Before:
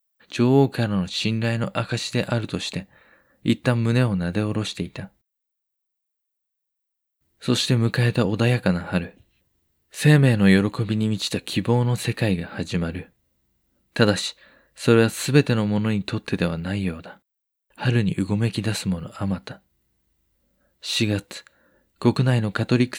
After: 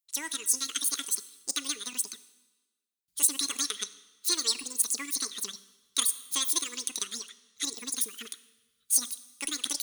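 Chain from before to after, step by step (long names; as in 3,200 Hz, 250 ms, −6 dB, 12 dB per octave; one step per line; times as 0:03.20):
reverb reduction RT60 1 s
dense smooth reverb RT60 2.8 s, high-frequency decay 0.85×, DRR 14 dB
in parallel at −9.5 dB: soft clipping −14 dBFS, distortion −13 dB
on the sum: guitar amp tone stack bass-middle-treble 10-0-10
wrong playback speed 33 rpm record played at 78 rpm
tilt shelving filter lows −7.5 dB
level −4 dB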